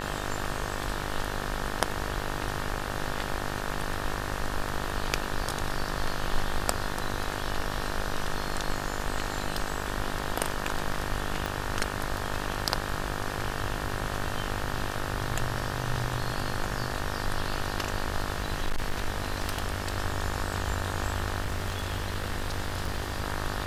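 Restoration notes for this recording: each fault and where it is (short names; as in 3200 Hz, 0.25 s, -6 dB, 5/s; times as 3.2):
buzz 50 Hz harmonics 37 -35 dBFS
11.46 pop
18.34–19.94 clipped -22.5 dBFS
21.4–23.24 clipped -25 dBFS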